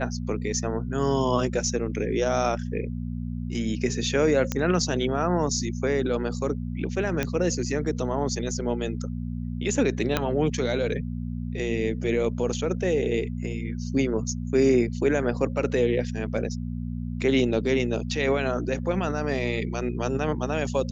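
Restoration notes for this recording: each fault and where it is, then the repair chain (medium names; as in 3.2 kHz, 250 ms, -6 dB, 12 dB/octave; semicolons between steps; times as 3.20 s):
hum 60 Hz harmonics 4 -31 dBFS
4.52 s: pop -11 dBFS
7.23 s: pop -12 dBFS
10.17 s: pop -8 dBFS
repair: de-click; de-hum 60 Hz, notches 4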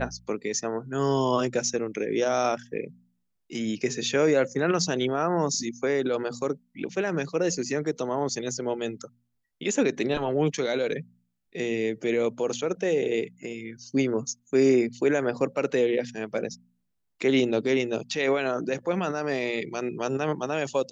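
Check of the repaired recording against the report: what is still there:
4.52 s: pop
10.17 s: pop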